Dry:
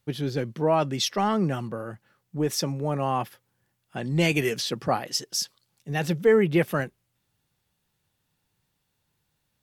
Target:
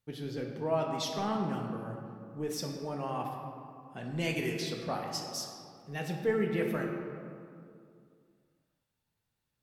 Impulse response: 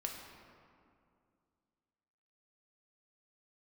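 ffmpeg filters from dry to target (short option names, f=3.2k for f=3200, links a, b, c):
-filter_complex "[1:a]atrim=start_sample=2205[a];[0:a][a]afir=irnorm=-1:irlink=0,volume=-8.5dB"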